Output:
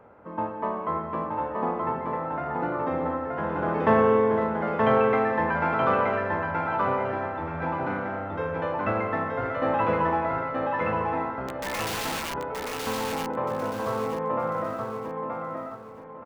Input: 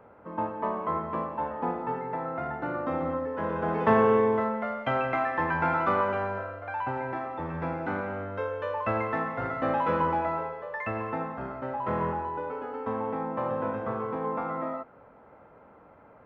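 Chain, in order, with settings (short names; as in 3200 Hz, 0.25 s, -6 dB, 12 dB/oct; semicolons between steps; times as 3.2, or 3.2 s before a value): downsampling 16000 Hz; 11.48–12.34 wrapped overs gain 28.5 dB; feedback echo 0.925 s, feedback 29%, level -3 dB; gain +1 dB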